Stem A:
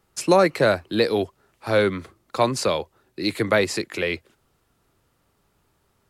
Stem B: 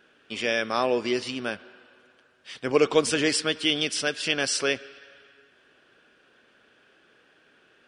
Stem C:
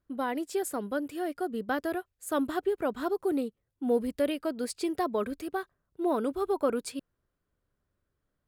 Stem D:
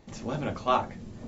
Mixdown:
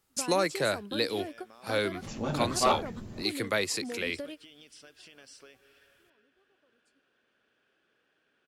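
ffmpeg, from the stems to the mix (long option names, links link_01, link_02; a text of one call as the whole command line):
ffmpeg -i stem1.wav -i stem2.wav -i stem3.wav -i stem4.wav -filter_complex "[0:a]highshelf=frequency=2400:gain=11,volume=-11.5dB,asplit=2[link_01][link_02];[1:a]alimiter=limit=-16.5dB:level=0:latency=1:release=137,acompressor=threshold=-36dB:ratio=10,adelay=800,volume=-13.5dB[link_03];[2:a]highshelf=frequency=6700:gain=-11.5,acompressor=threshold=-33dB:ratio=6,equalizer=frequency=7100:width=0.61:gain=10.5,volume=-3.5dB[link_04];[3:a]asoftclip=type=hard:threshold=-16dB,adelay=1950,volume=0dB[link_05];[link_02]apad=whole_len=373659[link_06];[link_04][link_06]sidechaingate=range=-33dB:threshold=-57dB:ratio=16:detection=peak[link_07];[link_01][link_03][link_07][link_05]amix=inputs=4:normalize=0" out.wav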